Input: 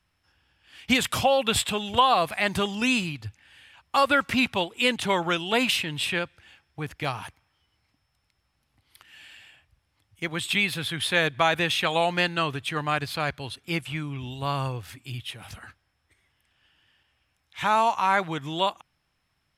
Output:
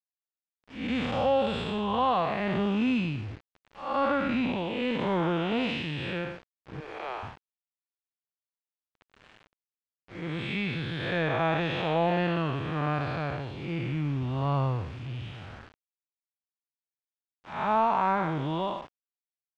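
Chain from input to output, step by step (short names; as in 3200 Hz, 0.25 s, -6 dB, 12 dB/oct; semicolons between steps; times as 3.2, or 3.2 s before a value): time blur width 0.231 s; 6.8–7.23 steep high-pass 330 Hz 96 dB/oct; in parallel at -8 dB: soft clip -30 dBFS, distortion -8 dB; on the sum: bit-crush 7-bit; tape spacing loss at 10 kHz 35 dB; gain +3 dB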